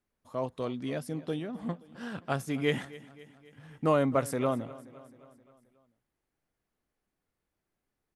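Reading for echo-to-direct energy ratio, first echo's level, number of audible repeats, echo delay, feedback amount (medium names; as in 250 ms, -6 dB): -17.5 dB, -19.0 dB, 4, 263 ms, 56%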